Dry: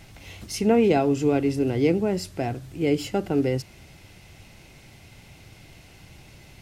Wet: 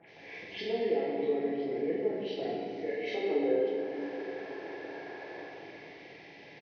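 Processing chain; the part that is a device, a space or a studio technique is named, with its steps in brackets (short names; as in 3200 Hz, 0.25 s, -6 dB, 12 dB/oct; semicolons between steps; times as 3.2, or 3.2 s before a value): 2.58–3.09 Bessel high-pass 690 Hz, order 2; 3.17–5.47 spectral gain 260–2300 Hz +12 dB; three bands offset in time lows, mids, highs 30/80 ms, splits 1500/4600 Hz; hearing aid with frequency lowering (nonlinear frequency compression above 1100 Hz 1.5:1; compressor 2.5:1, threshold -37 dBFS, peak gain reduction 19.5 dB; speaker cabinet 330–5200 Hz, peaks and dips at 440 Hz +7 dB, 1300 Hz -9 dB, 2300 Hz +10 dB); shoebox room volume 190 m³, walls hard, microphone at 0.79 m; gain -5 dB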